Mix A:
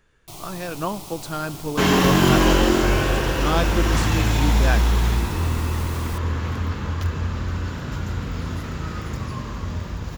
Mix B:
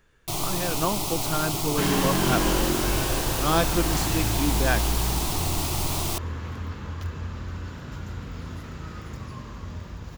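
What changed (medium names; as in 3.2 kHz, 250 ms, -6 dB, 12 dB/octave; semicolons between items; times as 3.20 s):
first sound +10.0 dB; second sound -8.0 dB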